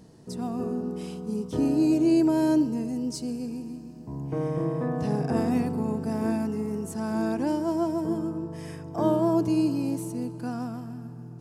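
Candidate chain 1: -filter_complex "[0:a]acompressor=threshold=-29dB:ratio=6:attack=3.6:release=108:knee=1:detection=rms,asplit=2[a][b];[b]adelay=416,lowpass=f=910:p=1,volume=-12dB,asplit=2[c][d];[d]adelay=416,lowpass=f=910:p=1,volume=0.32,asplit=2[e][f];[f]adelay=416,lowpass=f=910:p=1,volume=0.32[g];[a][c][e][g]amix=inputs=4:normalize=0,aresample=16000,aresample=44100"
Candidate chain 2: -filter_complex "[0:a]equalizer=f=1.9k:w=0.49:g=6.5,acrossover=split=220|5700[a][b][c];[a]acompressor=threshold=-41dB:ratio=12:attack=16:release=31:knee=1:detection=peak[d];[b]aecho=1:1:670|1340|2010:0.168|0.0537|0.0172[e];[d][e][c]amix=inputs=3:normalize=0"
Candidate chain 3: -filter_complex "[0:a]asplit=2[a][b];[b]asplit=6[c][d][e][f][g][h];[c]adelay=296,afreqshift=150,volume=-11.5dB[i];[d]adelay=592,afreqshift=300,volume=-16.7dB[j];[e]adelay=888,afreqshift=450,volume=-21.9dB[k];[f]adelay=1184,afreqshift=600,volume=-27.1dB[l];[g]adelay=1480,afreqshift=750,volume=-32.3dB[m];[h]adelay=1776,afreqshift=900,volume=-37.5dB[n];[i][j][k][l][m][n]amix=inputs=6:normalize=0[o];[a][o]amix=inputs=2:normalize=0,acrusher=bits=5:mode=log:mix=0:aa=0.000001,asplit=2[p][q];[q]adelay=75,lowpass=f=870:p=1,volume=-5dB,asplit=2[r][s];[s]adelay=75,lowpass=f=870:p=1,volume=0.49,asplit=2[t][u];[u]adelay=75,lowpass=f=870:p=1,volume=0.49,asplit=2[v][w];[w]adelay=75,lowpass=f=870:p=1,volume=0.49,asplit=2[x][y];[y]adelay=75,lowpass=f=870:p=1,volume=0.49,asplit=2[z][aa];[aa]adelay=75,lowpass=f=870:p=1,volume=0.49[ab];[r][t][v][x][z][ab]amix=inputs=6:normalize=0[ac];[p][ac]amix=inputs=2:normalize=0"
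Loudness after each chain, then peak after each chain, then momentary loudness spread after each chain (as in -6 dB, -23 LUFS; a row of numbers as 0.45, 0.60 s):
-34.0, -27.0, -26.0 LUFS; -23.0, -10.0, -9.5 dBFS; 6, 14, 12 LU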